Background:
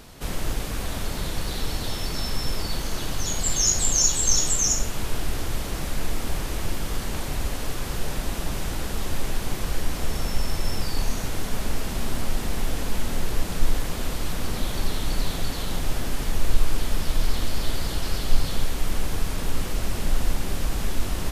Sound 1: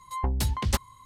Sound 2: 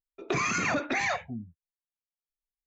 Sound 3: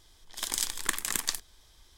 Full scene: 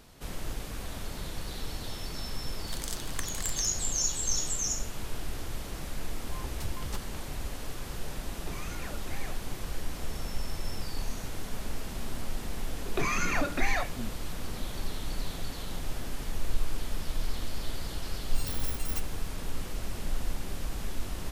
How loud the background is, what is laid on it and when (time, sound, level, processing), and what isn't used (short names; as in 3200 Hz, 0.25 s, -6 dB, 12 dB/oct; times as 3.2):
background -9 dB
2.3 add 3 -9 dB
6.2 add 1 -14 dB
8.17 add 2 -17.5 dB
12.67 add 2 -2.5 dB
18.23 add 1 -12 dB + FFT order left unsorted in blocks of 256 samples